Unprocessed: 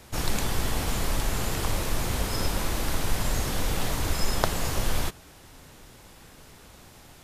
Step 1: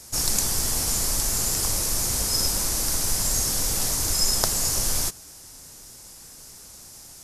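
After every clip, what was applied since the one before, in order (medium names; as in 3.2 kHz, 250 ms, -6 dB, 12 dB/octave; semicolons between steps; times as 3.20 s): high-order bell 7.7 kHz +16 dB; trim -3 dB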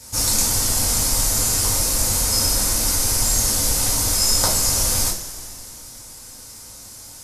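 two-slope reverb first 0.31 s, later 2.7 s, from -18 dB, DRR -5 dB; trim -1 dB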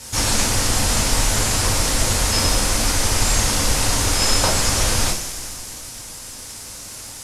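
CVSD coder 64 kbps; trim +4.5 dB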